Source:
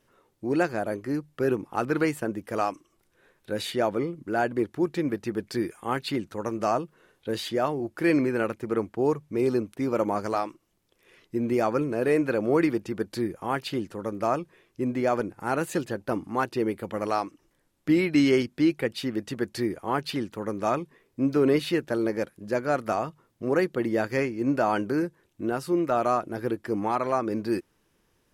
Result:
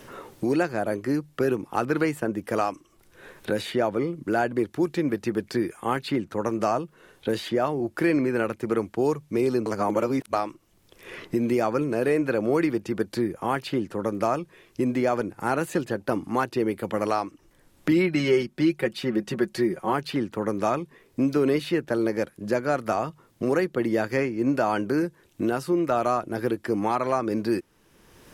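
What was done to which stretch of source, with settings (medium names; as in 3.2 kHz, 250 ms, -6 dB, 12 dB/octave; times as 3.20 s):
9.66–10.33 s: reverse
17.91–19.93 s: comb 5.4 ms
whole clip: three bands compressed up and down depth 70%; trim +1 dB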